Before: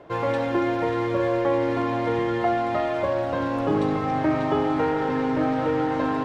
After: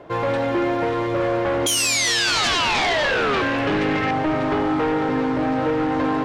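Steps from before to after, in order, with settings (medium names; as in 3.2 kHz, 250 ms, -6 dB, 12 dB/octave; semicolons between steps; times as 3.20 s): 2.27–4.11 s: high-order bell 2.2 kHz +12.5 dB 1.2 oct; 1.66–3.42 s: painted sound fall 360–3300 Hz -15 dBFS; sine folder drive 7 dB, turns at -10.5 dBFS; multi-head delay 190 ms, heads first and second, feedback 49%, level -18 dB; trim -6.5 dB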